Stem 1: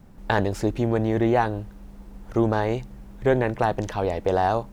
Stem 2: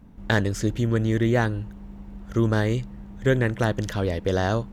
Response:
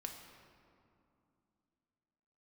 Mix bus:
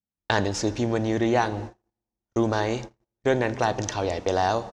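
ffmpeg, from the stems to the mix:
-filter_complex "[0:a]highshelf=frequency=2400:gain=6.5,volume=-5dB,asplit=3[link_01][link_02][link_03];[link_02]volume=-3.5dB[link_04];[1:a]acrossover=split=550[link_05][link_06];[link_05]aeval=exprs='val(0)*(1-0.5/2+0.5/2*cos(2*PI*3.7*n/s))':channel_layout=same[link_07];[link_06]aeval=exprs='val(0)*(1-0.5/2-0.5/2*cos(2*PI*3.7*n/s))':channel_layout=same[link_08];[link_07][link_08]amix=inputs=2:normalize=0,adelay=1.8,volume=-4dB[link_09];[link_03]apad=whole_len=208270[link_10];[link_09][link_10]sidechaincompress=threshold=-31dB:ratio=8:attack=12:release=390[link_11];[2:a]atrim=start_sample=2205[link_12];[link_04][link_12]afir=irnorm=-1:irlink=0[link_13];[link_01][link_11][link_13]amix=inputs=3:normalize=0,highpass=67,agate=range=-45dB:threshold=-34dB:ratio=16:detection=peak,lowpass=frequency=6000:width_type=q:width=2.7"

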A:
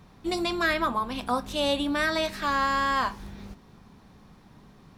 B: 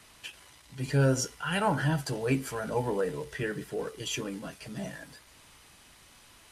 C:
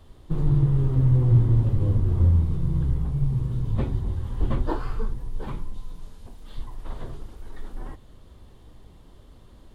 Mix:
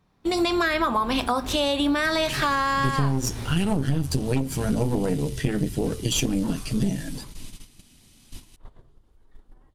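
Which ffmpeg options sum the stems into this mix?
ffmpeg -i stem1.wav -i stem2.wav -i stem3.wav -filter_complex "[0:a]bandreject=frequency=50:width_type=h:width=6,bandreject=frequency=100:width_type=h:width=6,bandreject=frequency=150:width_type=h:width=6,bandreject=frequency=200:width_type=h:width=6,bandreject=frequency=250:width_type=h:width=6,alimiter=limit=-22dB:level=0:latency=1:release=142,volume=1dB,asplit=2[link_01][link_02];[1:a]equalizer=frequency=125:width_type=o:width=1:gain=4,equalizer=frequency=250:width_type=o:width=1:gain=8,equalizer=frequency=500:width_type=o:width=1:gain=-8,equalizer=frequency=1000:width_type=o:width=1:gain=-10,equalizer=frequency=2000:width_type=o:width=1:gain=-3,aeval=exprs='0.299*(cos(1*acos(clip(val(0)/0.299,-1,1)))-cos(1*PI/2))+0.0531*(cos(6*acos(clip(val(0)/0.299,-1,1)))-cos(6*PI/2))':channel_layout=same,equalizer=frequency=1600:width=1.7:gain=-6,adelay=2050,volume=2.5dB[link_03];[2:a]adelay=1750,volume=-19.5dB[link_04];[link_02]apad=whole_len=507114[link_05];[link_04][link_05]sidechaincompress=threshold=-38dB:ratio=8:attack=16:release=227[link_06];[link_03][link_06]amix=inputs=2:normalize=0,acompressor=mode=upward:threshold=-45dB:ratio=2.5,alimiter=limit=-15dB:level=0:latency=1:release=230,volume=0dB[link_07];[link_01][link_07]amix=inputs=2:normalize=0,dynaudnorm=framelen=210:gausssize=3:maxgain=10.5dB,agate=range=-14dB:threshold=-36dB:ratio=16:detection=peak,acompressor=threshold=-19dB:ratio=6" out.wav

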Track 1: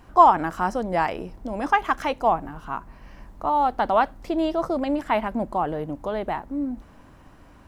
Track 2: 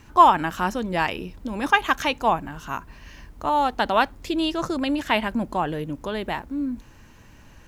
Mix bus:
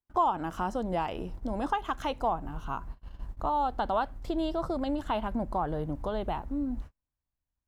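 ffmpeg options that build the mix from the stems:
ffmpeg -i stem1.wav -i stem2.wav -filter_complex "[0:a]acompressor=threshold=-26dB:ratio=2.5,volume=-3.5dB,asplit=2[link_01][link_02];[1:a]lowpass=frequency=3400:poles=1,volume=-8.5dB[link_03];[link_02]apad=whole_len=338349[link_04];[link_03][link_04]sidechaincompress=threshold=-32dB:ratio=8:attack=16:release=1480[link_05];[link_01][link_05]amix=inputs=2:normalize=0,agate=range=-44dB:threshold=-44dB:ratio=16:detection=peak,asubboost=boost=3:cutoff=120" out.wav

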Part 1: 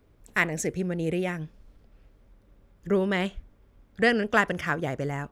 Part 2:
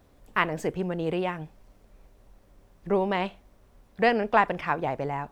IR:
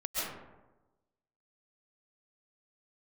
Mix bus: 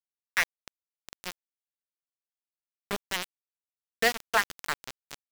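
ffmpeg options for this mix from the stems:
-filter_complex "[0:a]tiltshelf=frequency=670:gain=-8.5,acompressor=threshold=-33dB:ratio=1.5,volume=-1.5dB[link_01];[1:a]lowshelf=frequency=99:gain=11,adelay=4.3,volume=-10dB,asplit=2[link_02][link_03];[link_03]apad=whole_len=234276[link_04];[link_01][link_04]sidechaingate=range=-33dB:threshold=-48dB:ratio=16:detection=peak[link_05];[link_05][link_02]amix=inputs=2:normalize=0,lowpass=frequency=4700:width_type=q:width=1.6,aeval=exprs='val(0)*gte(abs(val(0)),0.0841)':channel_layout=same"

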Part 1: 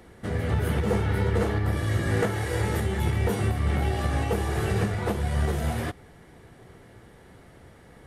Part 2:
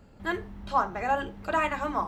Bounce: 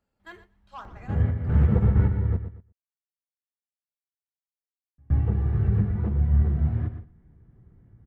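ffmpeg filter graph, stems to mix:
ffmpeg -i stem1.wav -i stem2.wav -filter_complex "[0:a]lowpass=1400,acompressor=mode=upward:threshold=-43dB:ratio=2.5,adelay=850,volume=-3dB,asplit=3[link_01][link_02][link_03];[link_01]atrim=end=2.25,asetpts=PTS-STARTPTS,afade=type=out:start_time=2.246:duration=0.004:curve=hsin[link_04];[link_02]atrim=start=2.25:end=4.98,asetpts=PTS-STARTPTS,volume=0[link_05];[link_03]atrim=start=4.98,asetpts=PTS-STARTPTS,afade=type=in:duration=0.004:curve=hsin[link_06];[link_04][link_05][link_06]concat=n=3:v=0:a=1,asplit=2[link_07][link_08];[link_08]volume=-7dB[link_09];[1:a]lowshelf=frequency=420:gain=-8.5,asoftclip=type=tanh:threshold=-20.5dB,volume=-11.5dB,afade=type=out:start_time=0.79:duration=0.7:silence=0.251189,asplit=3[link_10][link_11][link_12];[link_11]volume=-15dB[link_13];[link_12]apad=whole_len=393109[link_14];[link_07][link_14]sidechaingate=range=-33dB:threshold=-57dB:ratio=16:detection=peak[link_15];[link_09][link_13]amix=inputs=2:normalize=0,aecho=0:1:119|238|357|476:1|0.31|0.0961|0.0298[link_16];[link_15][link_10][link_16]amix=inputs=3:normalize=0,agate=range=-9dB:threshold=-52dB:ratio=16:detection=peak,asubboost=boost=8.5:cutoff=190" out.wav

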